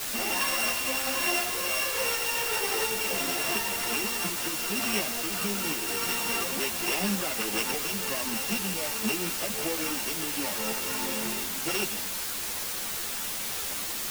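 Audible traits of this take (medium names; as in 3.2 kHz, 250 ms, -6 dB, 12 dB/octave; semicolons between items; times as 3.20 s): a buzz of ramps at a fixed pitch in blocks of 16 samples; tremolo saw up 1.4 Hz, depth 50%; a quantiser's noise floor 6-bit, dither triangular; a shimmering, thickened sound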